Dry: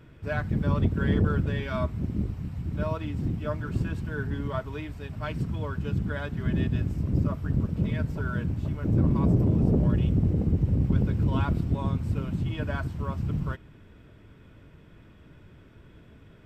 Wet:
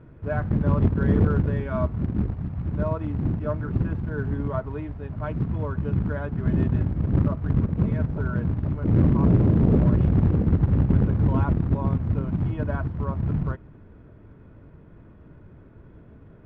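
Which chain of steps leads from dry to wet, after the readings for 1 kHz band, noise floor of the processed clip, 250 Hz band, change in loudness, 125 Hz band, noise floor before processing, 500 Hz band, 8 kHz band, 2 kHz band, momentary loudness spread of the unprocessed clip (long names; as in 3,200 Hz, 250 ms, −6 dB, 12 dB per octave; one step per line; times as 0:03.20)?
+2.5 dB, −49 dBFS, +4.0 dB, +4.0 dB, +4.0 dB, −52 dBFS, +4.0 dB, can't be measured, −1.5 dB, 9 LU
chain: floating-point word with a short mantissa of 2 bits
low-pass filter 1,200 Hz 12 dB per octave
level +4 dB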